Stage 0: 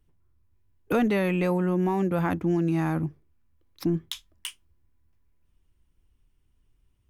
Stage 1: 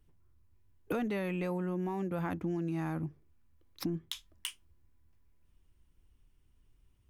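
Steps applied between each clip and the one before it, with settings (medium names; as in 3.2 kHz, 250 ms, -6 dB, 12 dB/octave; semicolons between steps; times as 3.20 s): compression 3:1, threshold -35 dBFS, peak gain reduction 11 dB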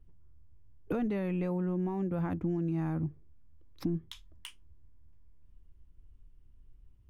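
tilt EQ -2.5 dB/octave; trim -2.5 dB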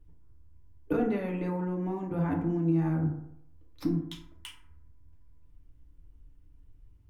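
FDN reverb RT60 0.75 s, low-frequency decay 0.9×, high-frequency decay 0.4×, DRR -1 dB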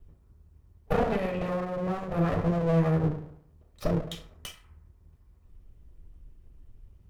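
comb filter that takes the minimum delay 1.6 ms; trim +5 dB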